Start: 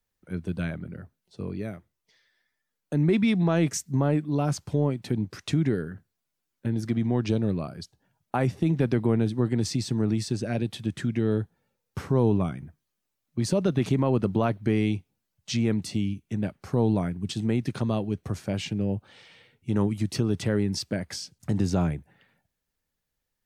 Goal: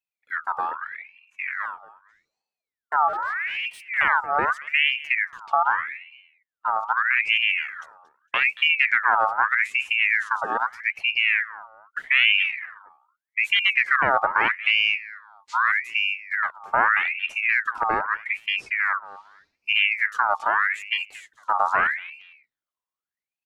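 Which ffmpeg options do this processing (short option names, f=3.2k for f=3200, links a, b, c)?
-filter_complex "[0:a]asplit=3[a][b][c];[a]afade=t=out:st=3.07:d=0.02[d];[b]asoftclip=type=hard:threshold=-29.5dB,afade=t=in:st=3.07:d=0.02,afade=t=out:st=3.97:d=0.02[e];[c]afade=t=in:st=3.97:d=0.02[f];[d][e][f]amix=inputs=3:normalize=0,afwtdn=0.0355,asettb=1/sr,asplit=3[g][h][i];[g]atrim=end=5.454[j];[h]atrim=start=5.45:end=6.92,asetpts=PTS-STARTPTS,afade=t=in:d=0.004:c=qsin,afade=t=out:st=1.466:d=0.004:c=qsin,adynamicsmooth=sensitivity=7:basefreq=4.1k[k];[i]atrim=start=6.916[l];[j][k]acrossfade=d=0.004:c1=hsin:c2=qsin[m];[m][l]acrossfade=d=0.004:c1=qsin:c2=hsin,aecho=1:1:229|458:0.126|0.034,aeval=exprs='val(0)*sin(2*PI*1800*n/s+1800*0.45/0.81*sin(2*PI*0.81*n/s))':c=same,volume=6dB"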